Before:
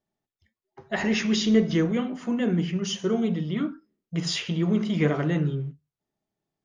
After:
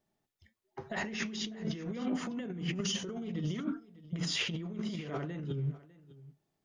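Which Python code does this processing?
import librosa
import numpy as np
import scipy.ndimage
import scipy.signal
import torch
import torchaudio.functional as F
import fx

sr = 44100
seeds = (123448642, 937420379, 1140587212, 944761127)

p1 = fx.over_compress(x, sr, threshold_db=-33.0, ratio=-1.0)
p2 = p1 + fx.echo_single(p1, sr, ms=601, db=-19.5, dry=0)
y = p2 * 10.0 ** (-4.0 / 20.0)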